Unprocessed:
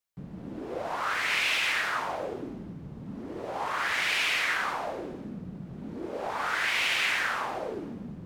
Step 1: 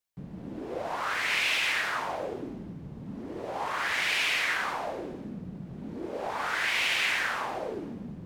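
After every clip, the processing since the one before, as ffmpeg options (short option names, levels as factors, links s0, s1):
-af "equalizer=f=1300:t=o:w=0.4:g=-2.5"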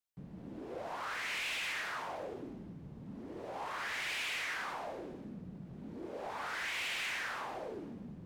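-af "asoftclip=type=tanh:threshold=0.0501,volume=0.447"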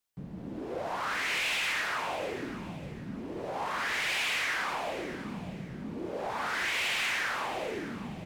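-af "aecho=1:1:597|1194|1791:0.211|0.0634|0.019,volume=2.24"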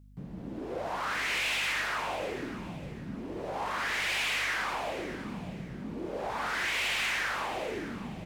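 -af "aeval=exprs='val(0)+0.00224*(sin(2*PI*50*n/s)+sin(2*PI*2*50*n/s)/2+sin(2*PI*3*50*n/s)/3+sin(2*PI*4*50*n/s)/4+sin(2*PI*5*50*n/s)/5)':c=same"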